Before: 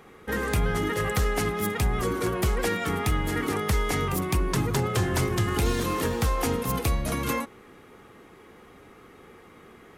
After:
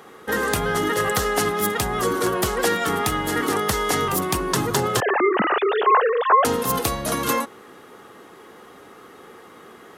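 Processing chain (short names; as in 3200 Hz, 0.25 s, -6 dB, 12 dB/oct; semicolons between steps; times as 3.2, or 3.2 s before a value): 5–6.45 sine-wave speech; HPF 400 Hz 6 dB/oct; bell 2300 Hz -8 dB 0.38 oct; gain +8.5 dB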